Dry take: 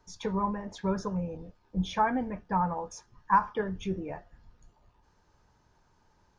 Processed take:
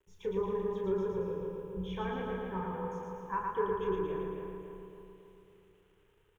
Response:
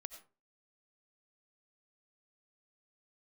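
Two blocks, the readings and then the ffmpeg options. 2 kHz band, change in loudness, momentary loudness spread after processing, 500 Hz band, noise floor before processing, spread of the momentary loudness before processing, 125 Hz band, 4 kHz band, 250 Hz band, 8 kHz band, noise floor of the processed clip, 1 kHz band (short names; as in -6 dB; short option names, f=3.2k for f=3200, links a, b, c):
-7.5 dB, -5.0 dB, 13 LU, +3.0 dB, -68 dBFS, 14 LU, -6.0 dB, -8.0 dB, -6.0 dB, n/a, -68 dBFS, -9.0 dB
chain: -filter_complex "[0:a]asplit=2[a][b];[b]adelay=275,lowpass=f=3.6k:p=1,volume=-5dB,asplit=2[c][d];[d]adelay=275,lowpass=f=3.6k:p=1,volume=0.55,asplit=2[e][f];[f]adelay=275,lowpass=f=3.6k:p=1,volume=0.55,asplit=2[g][h];[h]adelay=275,lowpass=f=3.6k:p=1,volume=0.55,asplit=2[i][j];[j]adelay=275,lowpass=f=3.6k:p=1,volume=0.55,asplit=2[k][l];[l]adelay=275,lowpass=f=3.6k:p=1,volume=0.55,asplit=2[m][n];[n]adelay=275,lowpass=f=3.6k:p=1,volume=0.55[o];[c][e][g][i][k][m][o]amix=inputs=7:normalize=0[p];[a][p]amix=inputs=2:normalize=0,acrusher=bits=9:mix=0:aa=0.000001,firequalizer=gain_entry='entry(120,0);entry(260,-11);entry(390,9);entry(650,-13);entry(920,-7);entry(1900,-5);entry(3100,0);entry(4400,-23);entry(6700,-14);entry(11000,-10)':delay=0.05:min_phase=1,aecho=1:1:113|226|339|452|565|678|791|904:0.708|0.411|0.238|0.138|0.0801|0.0465|0.027|0.0156,asplit=2[q][r];[1:a]atrim=start_sample=2205,adelay=32[s];[r][s]afir=irnorm=-1:irlink=0,volume=-0.5dB[t];[q][t]amix=inputs=2:normalize=0,volume=-7dB"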